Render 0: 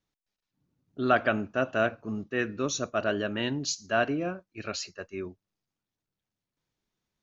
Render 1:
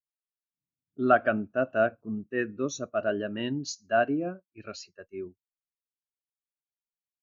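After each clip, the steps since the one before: spectral expander 1.5:1; gain +1 dB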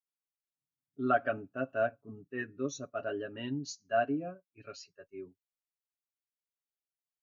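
comb 7.2 ms, depth 75%; gain -8.5 dB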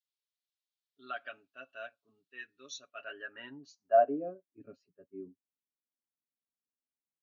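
band-pass sweep 3800 Hz -> 240 Hz, 2.72–4.69; gain +6.5 dB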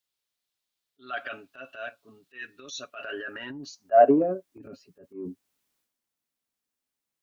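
transient shaper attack -7 dB, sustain +9 dB; gain +9 dB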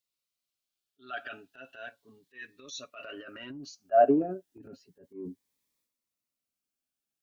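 cascading phaser rising 0.33 Hz; gain -3 dB

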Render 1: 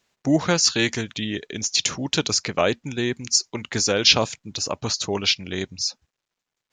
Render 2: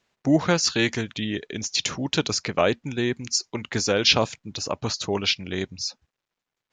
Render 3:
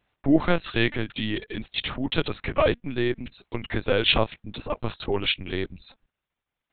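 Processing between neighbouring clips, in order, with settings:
high shelf 5900 Hz -10 dB
LPC vocoder at 8 kHz pitch kept

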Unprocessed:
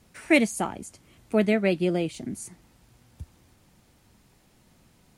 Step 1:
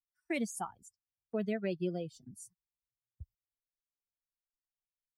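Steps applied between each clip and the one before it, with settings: per-bin expansion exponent 2; gate -52 dBFS, range -18 dB; limiter -18 dBFS, peak gain reduction 10 dB; gain -6.5 dB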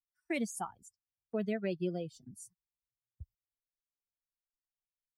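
nothing audible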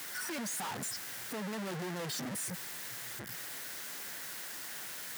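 infinite clipping; HPF 140 Hz 24 dB/oct; band noise 1400–2100 Hz -57 dBFS; gain +4 dB

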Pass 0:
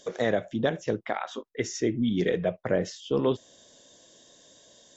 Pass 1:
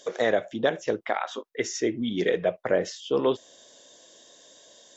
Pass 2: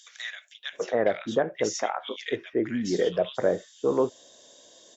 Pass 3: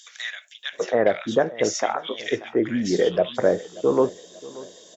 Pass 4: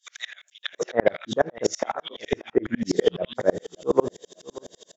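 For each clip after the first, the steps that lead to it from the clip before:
tone controls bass -12 dB, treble -1 dB; gain +3.5 dB
bands offset in time highs, lows 0.73 s, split 1800 Hz
feedback echo 0.584 s, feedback 43%, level -19.5 dB; gain +4.5 dB
dB-ramp tremolo swelling 12 Hz, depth 37 dB; gain +6.5 dB

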